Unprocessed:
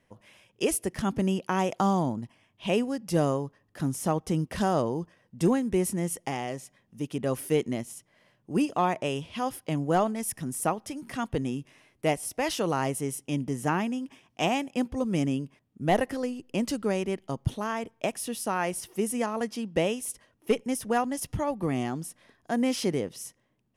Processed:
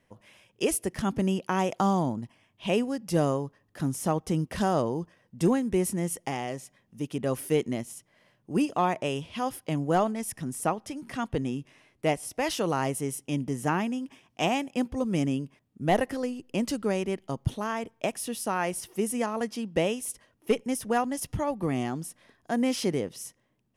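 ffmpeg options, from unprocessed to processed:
ffmpeg -i in.wav -filter_complex "[0:a]asettb=1/sr,asplit=3[link_01][link_02][link_03];[link_01]atrim=end=10.124[link_04];[link_02]atrim=start=10.12:end=12.36,asetpts=PTS-STARTPTS,afade=type=in:duration=0.004:curve=qsin,afade=type=out:start_time=2.236:duration=0.004:curve=qsin,highshelf=frequency=11000:gain=-8[link_05];[link_03]atrim=start=12.356[link_06];[link_04][link_05]acrossfade=duration=0.004:curve1=hsin:curve2=qsin[link_07];[link_07][link_06]acrossfade=duration=0.004:curve1=qsin:curve2=hsin" out.wav

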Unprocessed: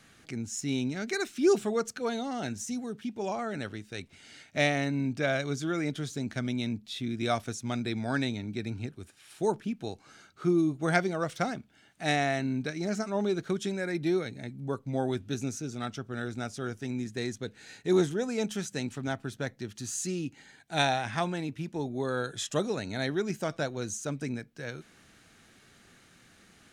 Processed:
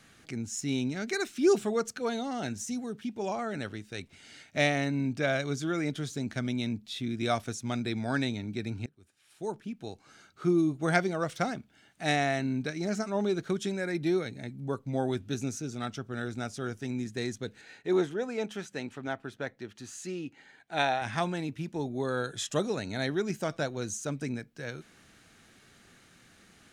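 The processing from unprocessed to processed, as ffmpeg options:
ffmpeg -i in.wav -filter_complex "[0:a]asettb=1/sr,asplit=3[link_01][link_02][link_03];[link_01]atrim=end=17.614[link_04];[link_02]atrim=start=17.61:end=21.02,asetpts=PTS-STARTPTS,afade=type=in:duration=0.004:curve=qsin,afade=type=out:start_time=3.406:duration=0.004:curve=qsin,bass=frequency=250:gain=-9,treble=frequency=4000:gain=-11[link_05];[link_03]atrim=start=21.016[link_06];[link_04][link_05]acrossfade=duration=0.004:curve1=hsin:curve2=qsin[link_07];[link_07][link_06]acrossfade=duration=0.004:curve1=qsin:curve2=hsin,asplit=2[link_08][link_09];[link_08]atrim=end=8.86,asetpts=PTS-STARTPTS,afade=type=out:start_time=8.856:duration=0.004:curve=hsin:silence=0.0944061[link_10];[link_09]atrim=start=8.86,asetpts=PTS-STARTPTS,afade=type=in:duration=1.64:silence=0.0944061[link_11];[link_10][link_11]concat=n=2:v=0:a=1" out.wav

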